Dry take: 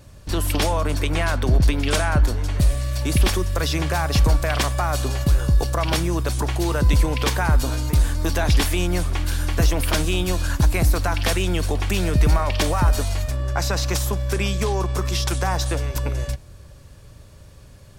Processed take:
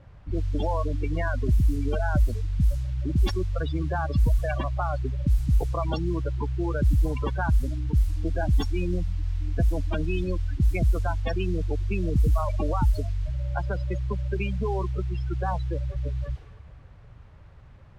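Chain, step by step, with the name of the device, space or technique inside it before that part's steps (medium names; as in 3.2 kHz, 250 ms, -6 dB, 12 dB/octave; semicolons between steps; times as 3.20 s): spring tank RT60 3.5 s, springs 43/51 ms, DRR 15 dB; spectral gate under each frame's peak -15 dB strong; cassette deck with a dynamic noise filter (white noise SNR 26 dB; level-controlled noise filter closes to 1.2 kHz, open at -12.5 dBFS); trim -4 dB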